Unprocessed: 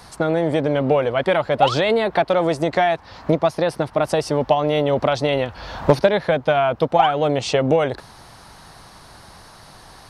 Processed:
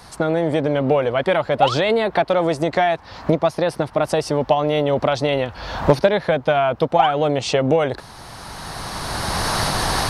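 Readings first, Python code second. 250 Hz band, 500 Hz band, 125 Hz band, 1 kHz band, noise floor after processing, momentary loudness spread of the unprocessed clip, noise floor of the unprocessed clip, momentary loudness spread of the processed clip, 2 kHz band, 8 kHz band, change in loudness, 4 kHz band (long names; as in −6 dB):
+0.5 dB, 0.0 dB, +1.0 dB, +0.5 dB, −42 dBFS, 5 LU, −45 dBFS, 10 LU, +1.0 dB, +7.5 dB, 0.0 dB, +2.5 dB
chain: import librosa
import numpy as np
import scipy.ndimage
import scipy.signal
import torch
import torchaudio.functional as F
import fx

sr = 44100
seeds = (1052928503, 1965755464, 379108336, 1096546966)

y = fx.recorder_agc(x, sr, target_db=-10.5, rise_db_per_s=14.0, max_gain_db=30)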